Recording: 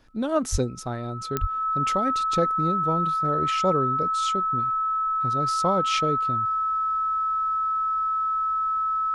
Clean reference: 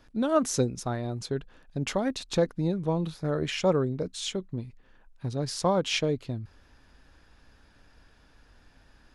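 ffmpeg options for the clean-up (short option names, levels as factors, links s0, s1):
-filter_complex "[0:a]adeclick=t=4,bandreject=f=1300:w=30,asplit=3[s0][s1][s2];[s0]afade=t=out:st=0.51:d=0.02[s3];[s1]highpass=f=140:w=0.5412,highpass=f=140:w=1.3066,afade=t=in:st=0.51:d=0.02,afade=t=out:st=0.63:d=0.02[s4];[s2]afade=t=in:st=0.63:d=0.02[s5];[s3][s4][s5]amix=inputs=3:normalize=0,asplit=3[s6][s7][s8];[s6]afade=t=out:st=1.4:d=0.02[s9];[s7]highpass=f=140:w=0.5412,highpass=f=140:w=1.3066,afade=t=in:st=1.4:d=0.02,afade=t=out:st=1.52:d=0.02[s10];[s8]afade=t=in:st=1.52:d=0.02[s11];[s9][s10][s11]amix=inputs=3:normalize=0"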